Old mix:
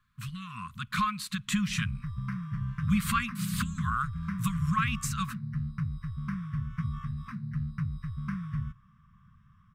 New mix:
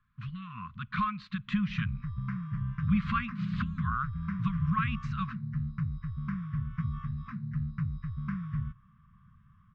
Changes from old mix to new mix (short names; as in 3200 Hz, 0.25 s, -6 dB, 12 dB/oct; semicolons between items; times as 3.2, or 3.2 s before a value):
speech: add air absorption 170 m; master: add air absorption 210 m